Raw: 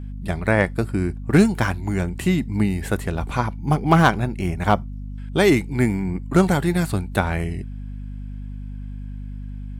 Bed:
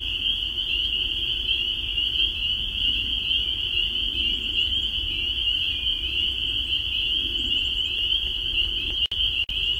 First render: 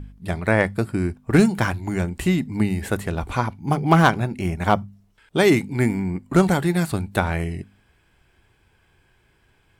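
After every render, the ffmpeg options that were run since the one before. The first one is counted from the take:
-af "bandreject=f=50:t=h:w=4,bandreject=f=100:t=h:w=4,bandreject=f=150:t=h:w=4,bandreject=f=200:t=h:w=4,bandreject=f=250:t=h:w=4"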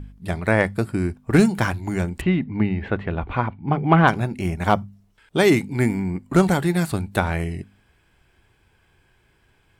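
-filter_complex "[0:a]asettb=1/sr,asplit=3[a][b][c];[a]atrim=end=2.214[d];[b]atrim=start=2.21:end=4.08,asetpts=PTS-STARTPTS,afade=t=in:d=0.004:c=qsin,afade=t=out:st=1.866:d=0.004:c=qsin,lowpass=f=3.1k:w=0.5412,lowpass=f=3.1k:w=1.3066[e];[c]atrim=start=4.076[f];[d][e]acrossfade=d=0.004:c1=hsin:c2=qsin[g];[g][f]acrossfade=d=0.004:c1=qsin:c2=hsin"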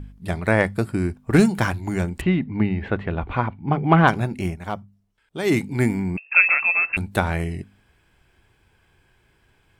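-filter_complex "[0:a]asettb=1/sr,asplit=3[a][b][c];[a]atrim=end=6.174[d];[b]atrim=start=6.17:end=6.97,asetpts=PTS-STARTPTS,afade=t=in:d=0.004:c=qsin,afade=t=out:st=0.796:d=0.004:c=qsin,lowpass=f=2.4k:t=q:w=0.5098,lowpass=f=2.4k:t=q:w=0.6013,lowpass=f=2.4k:t=q:w=0.9,lowpass=f=2.4k:t=q:w=2.563,afreqshift=-2800[e];[c]atrim=start=6.966[f];[d][e]acrossfade=d=0.004:c1=hsin:c2=qsin[g];[g][f]acrossfade=d=0.004:c1=qsin:c2=hsin,asplit=3[h][i][j];[h]atrim=end=4.6,asetpts=PTS-STARTPTS,afade=t=out:st=4.44:d=0.16:silence=0.298538[k];[i]atrim=start=4.6:end=5.42,asetpts=PTS-STARTPTS,volume=-10.5dB[l];[j]atrim=start=5.42,asetpts=PTS-STARTPTS,afade=t=in:d=0.16:silence=0.298538[m];[k][l][m]concat=n=3:v=0:a=1"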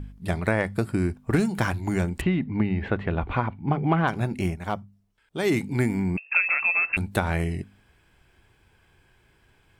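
-af "acompressor=threshold=-19dB:ratio=5"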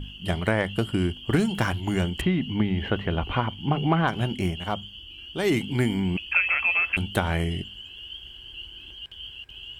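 -filter_complex "[1:a]volume=-16.5dB[a];[0:a][a]amix=inputs=2:normalize=0"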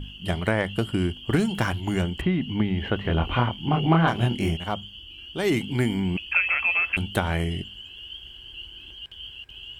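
-filter_complex "[0:a]asettb=1/sr,asplit=3[a][b][c];[a]atrim=end=2.024[d];[b]atrim=start=2.02:end=2.49,asetpts=PTS-STARTPTS,afade=t=in:d=0.004:c=qsin,afade=t=out:st=0.466:d=0.004:c=qsin,acrossover=split=2600[e][f];[f]acompressor=threshold=-42dB:ratio=4:attack=1:release=60[g];[e][g]amix=inputs=2:normalize=0[h];[c]atrim=start=2.486[i];[d][h]acrossfade=d=0.004:c1=hsin:c2=qsin[j];[j][i]acrossfade=d=0.004:c1=qsin:c2=hsin,asettb=1/sr,asplit=3[k][l][m];[k]atrim=end=3.024[n];[l]atrim=start=3.02:end=4.57,asetpts=PTS-STARTPTS,afade=t=in:d=0.004:c=qsin,afade=t=out:st=1.546:d=0.004:c=qsin,asplit=2[o][p];[p]adelay=25,volume=-2dB[q];[o][q]amix=inputs=2:normalize=0,atrim=end_sample=68355[r];[m]atrim=start=4.566[s];[n][r]acrossfade=d=0.004:c1=hsin:c2=qsin[t];[t][s]acrossfade=d=0.004:c1=qsin:c2=hsin"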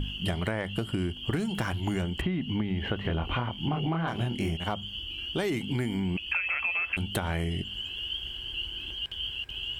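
-filter_complex "[0:a]asplit=2[a][b];[b]alimiter=limit=-18dB:level=0:latency=1,volume=-1dB[c];[a][c]amix=inputs=2:normalize=0,acompressor=threshold=-27dB:ratio=6"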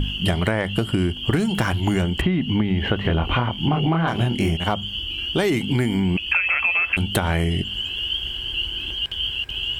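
-af "volume=9dB"

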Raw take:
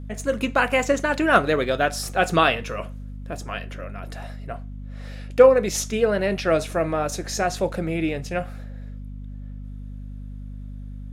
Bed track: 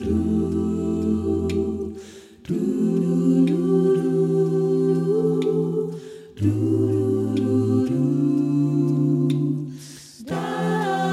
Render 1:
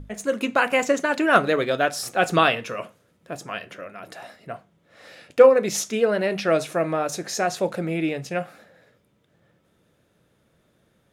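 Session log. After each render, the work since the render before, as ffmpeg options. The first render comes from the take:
-af "bandreject=f=50:t=h:w=6,bandreject=f=100:t=h:w=6,bandreject=f=150:t=h:w=6,bandreject=f=200:t=h:w=6,bandreject=f=250:t=h:w=6"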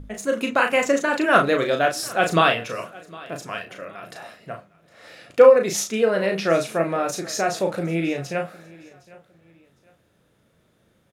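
-filter_complex "[0:a]asplit=2[a][b];[b]adelay=36,volume=-5dB[c];[a][c]amix=inputs=2:normalize=0,aecho=1:1:759|1518:0.0794|0.0246"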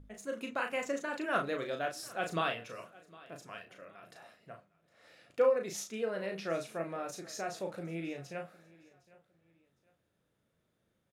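-af "volume=-15.5dB"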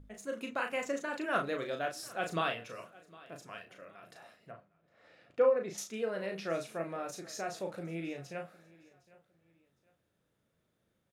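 -filter_complex "[0:a]asettb=1/sr,asplit=3[a][b][c];[a]atrim=end=4.514[d];[b]atrim=start=4.51:end=5.78,asetpts=PTS-STARTPTS,afade=t=in:d=0.004:c=qsin,afade=t=out:st=1.266:d=0.004:c=qsin,aemphasis=mode=reproduction:type=75fm[e];[c]atrim=start=5.776[f];[d][e]acrossfade=d=0.004:c1=hsin:c2=qsin[g];[g][f]acrossfade=d=0.004:c1=qsin:c2=hsin"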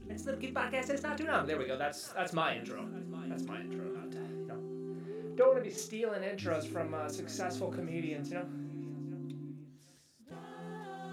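-filter_complex "[1:a]volume=-22.5dB[a];[0:a][a]amix=inputs=2:normalize=0"

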